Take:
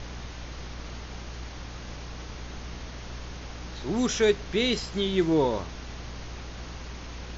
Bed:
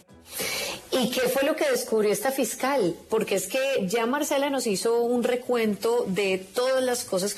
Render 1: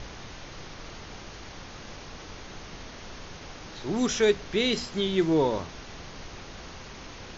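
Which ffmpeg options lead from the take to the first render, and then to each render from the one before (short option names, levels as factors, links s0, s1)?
-af "bandreject=f=60:t=h:w=4,bandreject=f=120:t=h:w=4,bandreject=f=180:t=h:w=4,bandreject=f=240:t=h:w=4,bandreject=f=300:t=h:w=4"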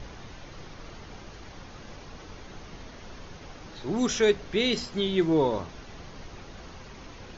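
-af "afftdn=nr=6:nf=-44"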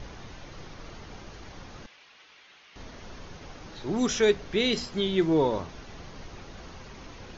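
-filter_complex "[0:a]asettb=1/sr,asplit=3[s0][s1][s2];[s0]atrim=end=1.864[s3];[s1]atrim=start=1.86:end=2.76,asetpts=PTS-STARTPTS,afade=t=in:d=0.004:c=qsin,afade=t=out:st=0.896:d=0.004:c=qsin,bandpass=f=2700:t=q:w=1.4[s4];[s2]atrim=start=2.756[s5];[s3][s4]acrossfade=d=0.004:c1=hsin:c2=qsin[s6];[s6][s5]acrossfade=d=0.004:c1=qsin:c2=hsin"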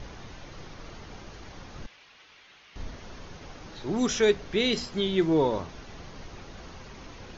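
-filter_complex "[0:a]asettb=1/sr,asplit=3[s0][s1][s2];[s0]atrim=end=1.764[s3];[s1]atrim=start=1.76:end=2.96,asetpts=PTS-STARTPTS,afade=t=in:d=0.004:c=qsin,afade=t=out:st=1.196:d=0.004:c=qsin,lowshelf=f=120:g=10.5[s4];[s2]atrim=start=2.956[s5];[s3][s4]acrossfade=d=0.004:c1=hsin:c2=qsin[s6];[s6][s5]acrossfade=d=0.004:c1=qsin:c2=hsin"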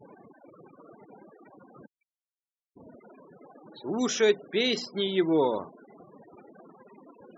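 -af "highpass=220,afftfilt=real='re*gte(hypot(re,im),0.0126)':imag='im*gte(hypot(re,im),0.0126)':win_size=1024:overlap=0.75"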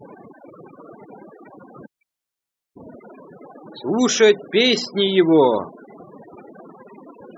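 -af "volume=3.16,alimiter=limit=0.708:level=0:latency=1"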